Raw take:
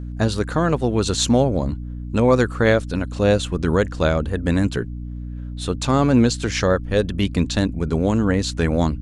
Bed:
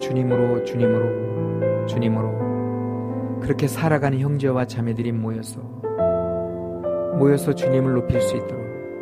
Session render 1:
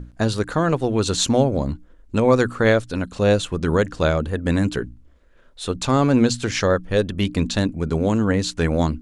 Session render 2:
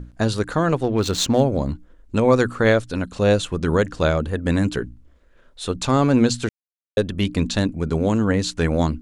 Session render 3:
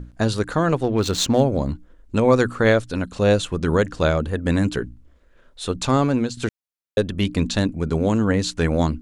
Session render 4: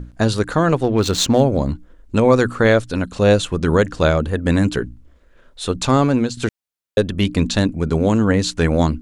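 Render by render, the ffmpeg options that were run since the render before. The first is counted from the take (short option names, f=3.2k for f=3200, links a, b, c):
-af "bandreject=f=60:t=h:w=6,bandreject=f=120:t=h:w=6,bandreject=f=180:t=h:w=6,bandreject=f=240:t=h:w=6,bandreject=f=300:t=h:w=6"
-filter_complex "[0:a]asettb=1/sr,asplit=3[a][b][c];[a]atrim=end=0.834[d];[b]atrim=start=0.83:end=1.41,asetpts=PTS-STARTPTS,afade=t=in:d=0.004:c=qsin,afade=t=out:st=0.576:d=0.004:c=qsin,adynamicsmooth=sensitivity=4.5:basefreq=2.3k[e];[c]atrim=start=1.406[f];[d][e]acrossfade=d=0.004:c1=hsin:c2=qsin[g];[g][f]acrossfade=d=0.004:c1=qsin:c2=hsin,asplit=3[h][i][j];[h]atrim=end=6.49,asetpts=PTS-STARTPTS,afade=t=out:st=6.486:d=0.004:c=hsin[k];[i]atrim=start=6.49:end=6.97,asetpts=PTS-STARTPTS,volume=0[l];[j]atrim=start=6.97,asetpts=PTS-STARTPTS,afade=t=in:d=0.004:c=hsin[m];[k][l][m]concat=n=3:v=0:a=1"
-filter_complex "[0:a]asplit=2[a][b];[a]atrim=end=6.37,asetpts=PTS-STARTPTS,afade=t=out:st=5.94:d=0.43:silence=0.237137[c];[b]atrim=start=6.37,asetpts=PTS-STARTPTS,afade=t=in:d=0.004:c=hsin:silence=0.237137[d];[c][d]concat=n=2:v=0:a=1"
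-af "volume=3.5dB,alimiter=limit=-3dB:level=0:latency=1"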